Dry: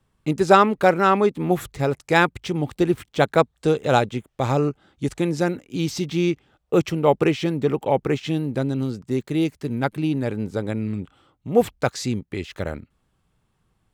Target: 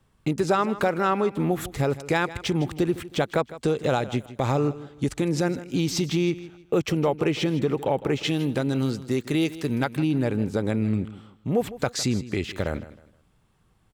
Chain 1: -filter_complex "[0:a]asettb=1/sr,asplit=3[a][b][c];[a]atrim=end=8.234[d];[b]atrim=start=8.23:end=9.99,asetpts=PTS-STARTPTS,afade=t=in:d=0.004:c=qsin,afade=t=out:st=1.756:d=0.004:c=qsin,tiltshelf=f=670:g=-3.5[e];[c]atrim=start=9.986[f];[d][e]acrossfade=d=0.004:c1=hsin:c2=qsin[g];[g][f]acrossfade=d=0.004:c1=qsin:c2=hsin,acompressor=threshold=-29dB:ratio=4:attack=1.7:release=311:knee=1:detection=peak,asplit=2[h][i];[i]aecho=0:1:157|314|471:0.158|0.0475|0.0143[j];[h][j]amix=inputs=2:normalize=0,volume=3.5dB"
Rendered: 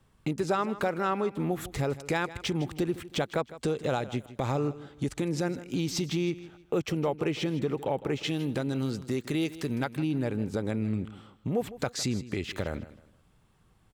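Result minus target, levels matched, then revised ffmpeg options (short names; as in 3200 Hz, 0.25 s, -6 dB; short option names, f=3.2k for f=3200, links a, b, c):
compressor: peak gain reduction +5.5 dB
-filter_complex "[0:a]asettb=1/sr,asplit=3[a][b][c];[a]atrim=end=8.234[d];[b]atrim=start=8.23:end=9.99,asetpts=PTS-STARTPTS,afade=t=in:d=0.004:c=qsin,afade=t=out:st=1.756:d=0.004:c=qsin,tiltshelf=f=670:g=-3.5[e];[c]atrim=start=9.986[f];[d][e]acrossfade=d=0.004:c1=hsin:c2=qsin[g];[g][f]acrossfade=d=0.004:c1=qsin:c2=hsin,acompressor=threshold=-21.5dB:ratio=4:attack=1.7:release=311:knee=1:detection=peak,asplit=2[h][i];[i]aecho=0:1:157|314|471:0.158|0.0475|0.0143[j];[h][j]amix=inputs=2:normalize=0,volume=3.5dB"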